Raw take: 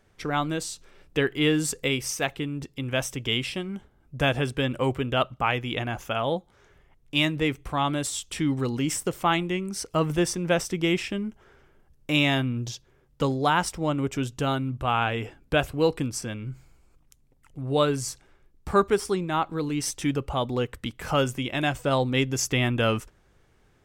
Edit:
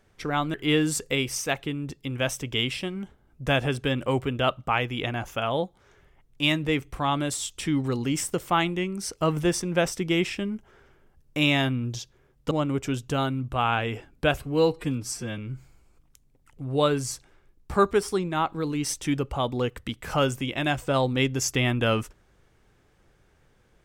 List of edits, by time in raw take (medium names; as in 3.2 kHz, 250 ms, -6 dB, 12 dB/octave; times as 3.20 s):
0.54–1.27 s: delete
13.24–13.80 s: delete
15.71–16.35 s: stretch 1.5×